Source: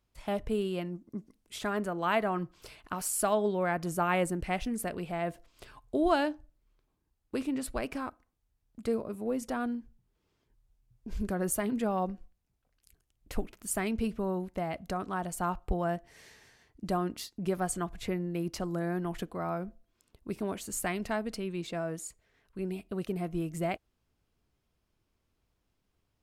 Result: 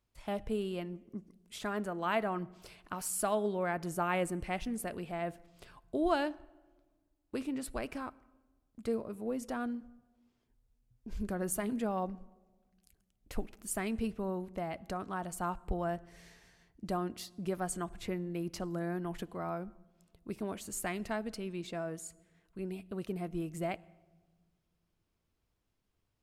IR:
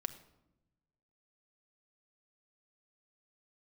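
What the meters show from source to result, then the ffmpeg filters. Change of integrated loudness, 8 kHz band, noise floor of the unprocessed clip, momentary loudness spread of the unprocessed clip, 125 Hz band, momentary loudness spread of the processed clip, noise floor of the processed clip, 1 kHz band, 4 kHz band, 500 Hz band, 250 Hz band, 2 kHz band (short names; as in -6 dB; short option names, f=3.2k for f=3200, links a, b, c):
-4.0 dB, -4.0 dB, -79 dBFS, 12 LU, -4.5 dB, 12 LU, -80 dBFS, -4.0 dB, -4.0 dB, -4.0 dB, -3.5 dB, -4.0 dB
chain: -filter_complex "[0:a]asplit=2[a][b];[1:a]atrim=start_sample=2205,asetrate=25137,aresample=44100[c];[b][c]afir=irnorm=-1:irlink=0,volume=-12.5dB[d];[a][d]amix=inputs=2:normalize=0,volume=-6dB"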